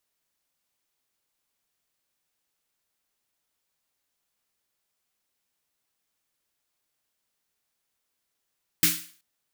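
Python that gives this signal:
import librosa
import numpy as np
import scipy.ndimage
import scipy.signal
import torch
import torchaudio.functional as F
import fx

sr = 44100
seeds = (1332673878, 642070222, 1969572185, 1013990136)

y = fx.drum_snare(sr, seeds[0], length_s=0.38, hz=170.0, second_hz=310.0, noise_db=10.0, noise_from_hz=1500.0, decay_s=0.35, noise_decay_s=0.44)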